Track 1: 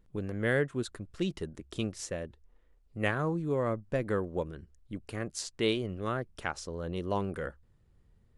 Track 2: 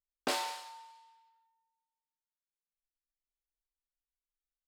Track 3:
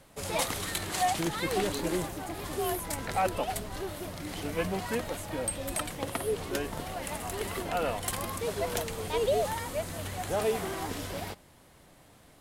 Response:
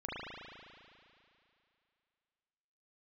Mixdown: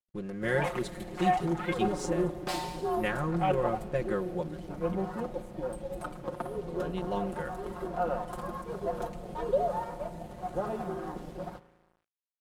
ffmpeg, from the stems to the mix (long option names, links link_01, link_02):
-filter_complex "[0:a]volume=-4dB,asplit=3[link_01][link_02][link_03];[link_01]atrim=end=4.95,asetpts=PTS-STARTPTS,afade=type=out:start_time=4.946:duration=0.004:curve=hsin[link_04];[link_02]atrim=start=4.95:end=6.67,asetpts=PTS-STARTPTS,volume=0[link_05];[link_03]atrim=start=6.67,asetpts=PTS-STARTPTS,afade=type=in:duration=0.004:curve=hsin[link_06];[link_04][link_05][link_06]concat=n=3:v=0:a=1,asplit=2[link_07][link_08];[link_08]volume=-20.5dB[link_09];[1:a]adelay=2200,volume=-5dB[link_10];[2:a]afwtdn=0.02,highshelf=frequency=8900:gain=-5.5,adelay=250,volume=-4dB,asplit=2[link_11][link_12];[link_12]volume=-15dB[link_13];[3:a]atrim=start_sample=2205[link_14];[link_09][link_13]amix=inputs=2:normalize=0[link_15];[link_15][link_14]afir=irnorm=-1:irlink=0[link_16];[link_07][link_10][link_11][link_16]amix=inputs=4:normalize=0,aecho=1:1:5.6:0.92,aeval=exprs='sgn(val(0))*max(abs(val(0))-0.00158,0)':channel_layout=same"